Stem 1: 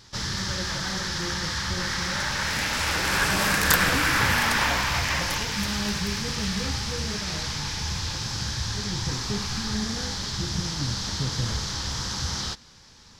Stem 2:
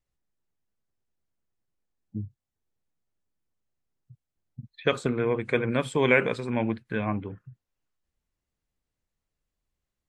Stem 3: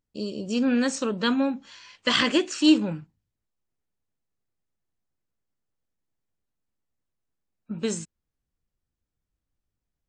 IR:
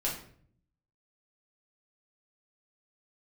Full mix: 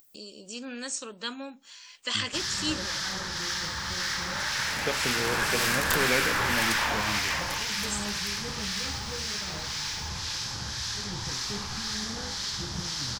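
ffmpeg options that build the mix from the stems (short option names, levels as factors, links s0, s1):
-filter_complex "[0:a]lowshelf=f=380:g=-8,acrossover=split=1300[s0][s1];[s0]aeval=exprs='val(0)*(1-0.5/2+0.5/2*cos(2*PI*1.9*n/s))':c=same[s2];[s1]aeval=exprs='val(0)*(1-0.5/2-0.5/2*cos(2*PI*1.9*n/s))':c=same[s3];[s2][s3]amix=inputs=2:normalize=0,aeval=exprs='clip(val(0),-1,0.0562)':c=same,adelay=2200,volume=1.06[s4];[1:a]volume=0.447[s5];[2:a]aemphasis=mode=production:type=riaa,acompressor=mode=upward:threshold=0.0355:ratio=2.5,volume=0.282[s6];[s4][s5][s6]amix=inputs=3:normalize=0"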